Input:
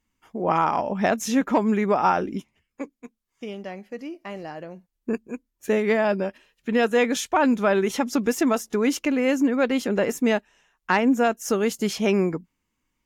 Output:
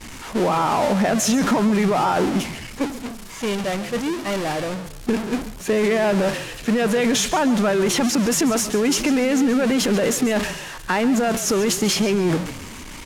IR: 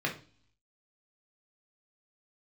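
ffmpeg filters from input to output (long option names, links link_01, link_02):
-filter_complex "[0:a]aeval=exprs='val(0)+0.5*0.0708*sgn(val(0))':channel_layout=same,lowpass=11000,agate=range=-33dB:threshold=-20dB:ratio=3:detection=peak,acontrast=37,alimiter=limit=-13.5dB:level=0:latency=1:release=35,acompressor=threshold=-26dB:ratio=2,asplit=5[link_01][link_02][link_03][link_04][link_05];[link_02]adelay=137,afreqshift=-34,volume=-14dB[link_06];[link_03]adelay=274,afreqshift=-68,volume=-22.6dB[link_07];[link_04]adelay=411,afreqshift=-102,volume=-31.3dB[link_08];[link_05]adelay=548,afreqshift=-136,volume=-39.9dB[link_09];[link_01][link_06][link_07][link_08][link_09]amix=inputs=5:normalize=0,volume=5.5dB"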